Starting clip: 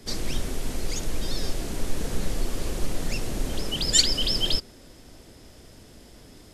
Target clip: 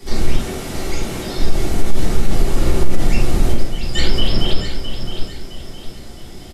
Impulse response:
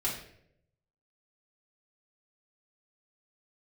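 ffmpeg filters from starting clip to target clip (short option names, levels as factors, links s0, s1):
-filter_complex "[0:a]asettb=1/sr,asplit=3[s0][s1][s2];[s0]atrim=end=0.374[s3];[s1]atrim=start=0.37:end=1.38,asetpts=PTS-STARTPTS,afade=t=in:d=0.004:c=qsin,afade=t=out:st=1.006:d=0.004:c=qsin,highpass=f=190:p=1[s4];[s2]atrim=start=1.376[s5];[s3][s4]acrossfade=d=0.004:c1=hsin:c2=qsin[s6];[s6][s5]acrossfade=d=0.004:c1=qsin:c2=hsin,asettb=1/sr,asplit=3[s7][s8][s9];[s7]atrim=end=2.524[s10];[s8]atrim=start=2.52:end=2.97,asetpts=PTS-STARTPTS,afade=t=in:d=0.004:c=qsin,afade=t=out:st=0.446:d=0.004:c=qsin,asplit=2[s11][s12];[s12]adelay=47,volume=0.708[s13];[s11][s13]amix=inputs=2:normalize=0,atrim=end_sample=19845[s14];[s9]atrim=start=2.966[s15];[s10][s14]acrossfade=d=0.004:c1=hsin:c2=qsin[s16];[s16][s15]acrossfade=d=0.004:c1=qsin:c2=hsin,asettb=1/sr,asplit=3[s17][s18][s19];[s17]atrim=end=3.524[s20];[s18]atrim=start=3.52:end=4.06,asetpts=PTS-STARTPTS,afade=t=in:d=0.004:c=qsin,afade=t=out:st=0.536:d=0.004:c=qsin,agate=range=0.126:threshold=0.0794:ratio=16:detection=peak[s21];[s19]atrim=start=4.056[s22];[s20][s21]acrossfade=d=0.004:c1=hsin:c2=qsin[s23];[s23][s22]acrossfade=d=0.004:c1=qsin:c2=hsin,acrossover=split=2500[s24][s25];[s25]acompressor=threshold=0.00891:ratio=4:attack=1:release=60[s26];[s24][s26]amix=inputs=2:normalize=0,aecho=1:1:663|1326|1989|2652:0.355|0.128|0.046|0.0166[s27];[1:a]atrim=start_sample=2205,afade=t=out:st=0.15:d=0.01,atrim=end_sample=7056[s28];[s27][s28]afir=irnorm=-1:irlink=0,alimiter=level_in=2:limit=0.891:release=50:level=0:latency=1,volume=0.891"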